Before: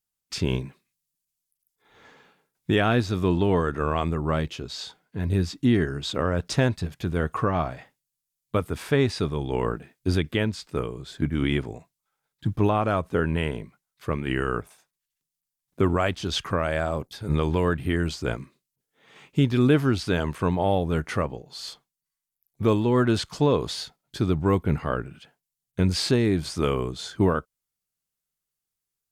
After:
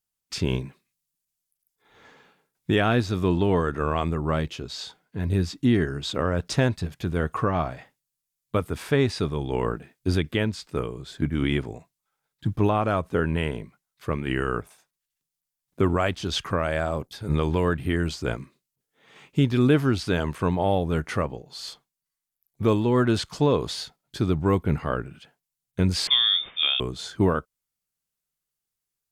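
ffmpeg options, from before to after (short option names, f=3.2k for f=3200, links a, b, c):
-filter_complex "[0:a]asettb=1/sr,asplit=3[a][b][c];[a]atrim=end=26.074[d];[b]atrim=start=26.07:end=26.8,asetpts=PTS-STARTPTS,afade=t=in:d=0.004:c=qsin,afade=t=out:st=0.726:d=0.004:c=qsin,lowpass=f=3.1k:t=q:w=0.5098,lowpass=f=3.1k:t=q:w=0.6013,lowpass=f=3.1k:t=q:w=0.9,lowpass=f=3.1k:t=q:w=2.563,afreqshift=-3700[e];[c]atrim=start=26.796[f];[d][e]acrossfade=d=0.004:c1=hsin:c2=qsin[g];[g][f]acrossfade=d=0.004:c1=qsin:c2=hsin"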